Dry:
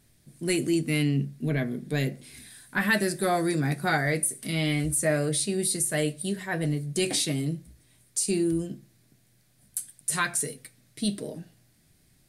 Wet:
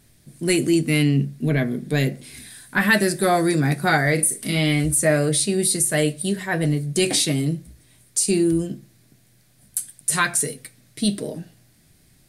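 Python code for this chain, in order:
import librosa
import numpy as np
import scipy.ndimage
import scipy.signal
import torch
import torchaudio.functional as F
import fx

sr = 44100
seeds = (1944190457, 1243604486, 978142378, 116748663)

y = fx.doubler(x, sr, ms=39.0, db=-7.0, at=(4.17, 4.58), fade=0.02)
y = F.gain(torch.from_numpy(y), 6.5).numpy()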